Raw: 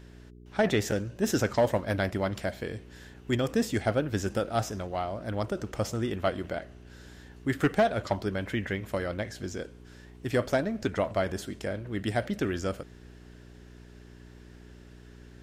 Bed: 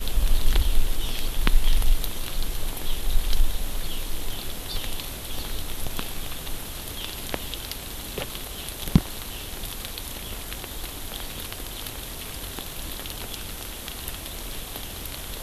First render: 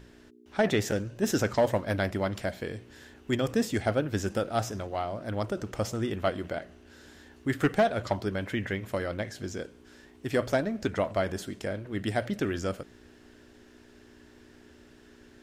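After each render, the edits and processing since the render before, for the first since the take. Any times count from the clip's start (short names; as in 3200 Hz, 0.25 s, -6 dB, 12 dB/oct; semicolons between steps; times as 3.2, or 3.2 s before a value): de-hum 60 Hz, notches 3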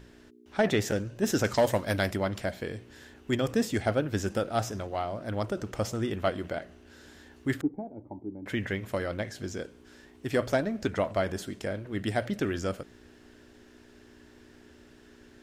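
1.44–2.16 high shelf 3500 Hz +9.5 dB; 7.61–8.46 vocal tract filter u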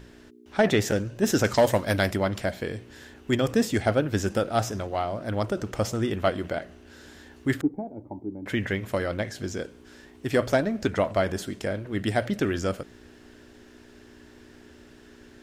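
gain +4 dB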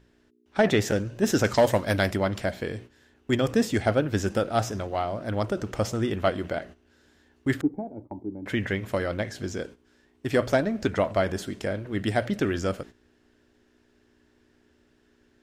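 gate -42 dBFS, range -13 dB; high shelf 8200 Hz -4 dB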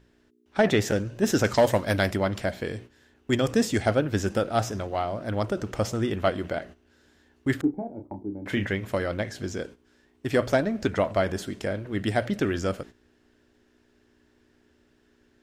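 2.63–3.97 dynamic EQ 7100 Hz, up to +4 dB, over -50 dBFS, Q 0.82; 7.61–8.67 doubler 30 ms -7.5 dB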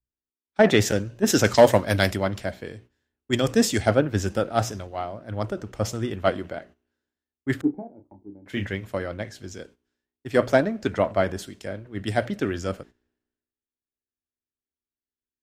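three-band expander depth 100%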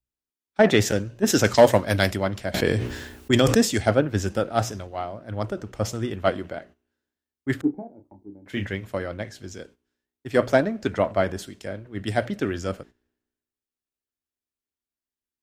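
2.54–3.61 fast leveller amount 70%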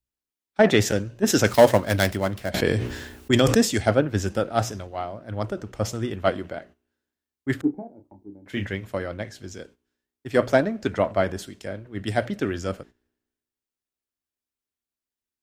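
1.47–2.5 switching dead time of 0.057 ms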